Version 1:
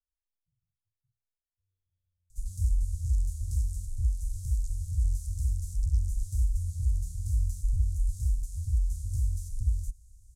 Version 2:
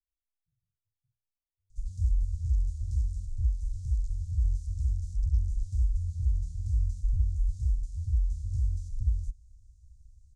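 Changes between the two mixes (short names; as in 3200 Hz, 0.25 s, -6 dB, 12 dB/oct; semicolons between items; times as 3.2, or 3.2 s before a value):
background: entry -0.60 s; master: add air absorption 120 m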